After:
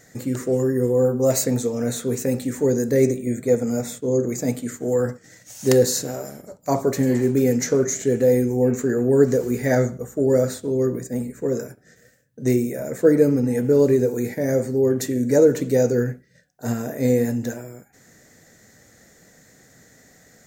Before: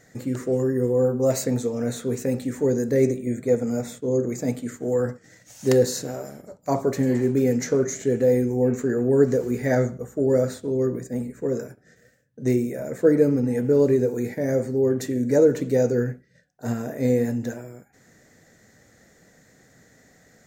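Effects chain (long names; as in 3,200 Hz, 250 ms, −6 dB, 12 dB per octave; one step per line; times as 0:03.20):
high-shelf EQ 5,600 Hz +7.5 dB
level +2 dB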